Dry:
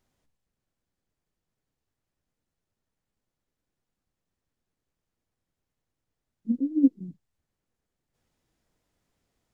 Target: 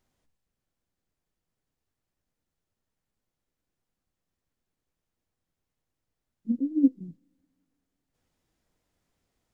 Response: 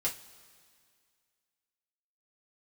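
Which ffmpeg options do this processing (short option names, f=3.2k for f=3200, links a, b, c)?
-filter_complex "[0:a]asplit=2[a][b];[b]equalizer=f=290:t=o:w=0.77:g=-7.5[c];[1:a]atrim=start_sample=2205[d];[c][d]afir=irnorm=-1:irlink=0,volume=-19dB[e];[a][e]amix=inputs=2:normalize=0,volume=-1.5dB"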